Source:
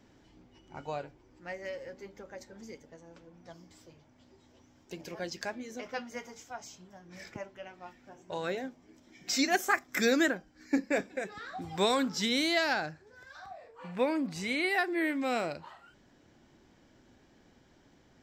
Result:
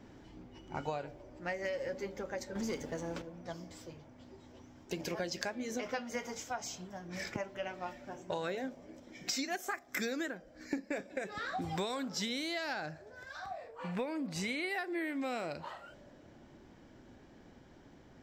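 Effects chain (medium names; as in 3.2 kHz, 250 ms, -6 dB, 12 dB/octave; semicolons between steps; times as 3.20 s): in parallel at -2.5 dB: gain riding within 4 dB 2 s; 2.55–3.22 s: on the sum: waveshaping leveller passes 2; compression 20:1, threshold -33 dBFS, peak gain reduction 17.5 dB; on a send at -8.5 dB: band-pass filter 590 Hz, Q 7.2 + reverberation RT60 2.9 s, pre-delay 23 ms; on the sum: tape noise reduction on one side only decoder only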